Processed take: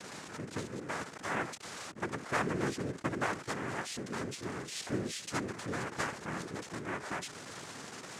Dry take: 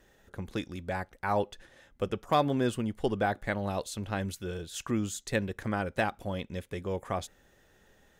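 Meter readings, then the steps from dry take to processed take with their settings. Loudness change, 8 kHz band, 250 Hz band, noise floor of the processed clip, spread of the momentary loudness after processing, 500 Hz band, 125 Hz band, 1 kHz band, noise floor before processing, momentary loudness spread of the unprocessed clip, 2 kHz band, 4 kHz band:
-5.0 dB, +1.0 dB, -5.5 dB, -49 dBFS, 9 LU, -7.0 dB, -6.5 dB, -5.5 dB, -64 dBFS, 10 LU, -0.5 dB, -1.0 dB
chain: zero-crossing step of -30.5 dBFS; noise vocoder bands 3; gain -8 dB

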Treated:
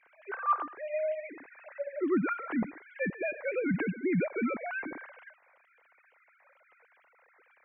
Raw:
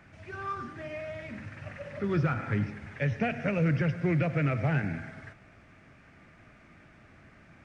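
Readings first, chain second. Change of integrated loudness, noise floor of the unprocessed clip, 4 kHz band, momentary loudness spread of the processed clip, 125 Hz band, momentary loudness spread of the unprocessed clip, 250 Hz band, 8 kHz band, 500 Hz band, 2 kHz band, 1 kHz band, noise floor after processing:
-2.0 dB, -57 dBFS, under -10 dB, 13 LU, -13.0 dB, 15 LU, -1.0 dB, n/a, +1.5 dB, -0.5 dB, +2.5 dB, -67 dBFS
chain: sine-wave speech; gain -2.5 dB

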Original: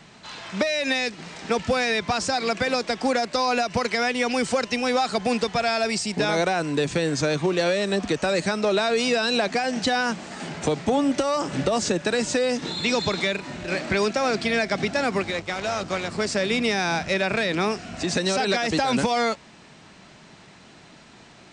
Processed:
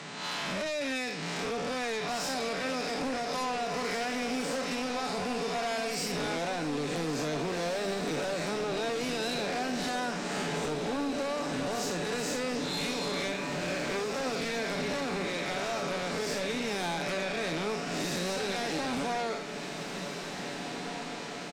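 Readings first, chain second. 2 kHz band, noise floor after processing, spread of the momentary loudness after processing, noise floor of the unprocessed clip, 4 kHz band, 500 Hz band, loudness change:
-8.5 dB, -38 dBFS, 3 LU, -49 dBFS, -7.5 dB, -8.5 dB, -8.5 dB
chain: time blur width 0.132 s; HPF 160 Hz 24 dB/oct; comb 7 ms, depth 40%; compressor 4:1, threshold -38 dBFS, peak gain reduction 16 dB; sine folder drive 9 dB, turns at -25.5 dBFS; diffused feedback echo 1.914 s, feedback 46%, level -8 dB; gain -4 dB

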